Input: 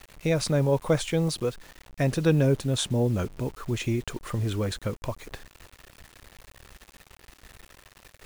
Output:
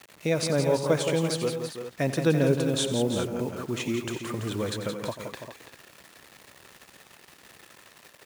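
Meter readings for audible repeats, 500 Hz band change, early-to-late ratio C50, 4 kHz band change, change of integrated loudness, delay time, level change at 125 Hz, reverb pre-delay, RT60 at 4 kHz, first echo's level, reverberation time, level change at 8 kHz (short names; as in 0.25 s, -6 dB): 4, +1.5 dB, none, +1.5 dB, -0.5 dB, 89 ms, -4.0 dB, none, none, -14.0 dB, none, +1.5 dB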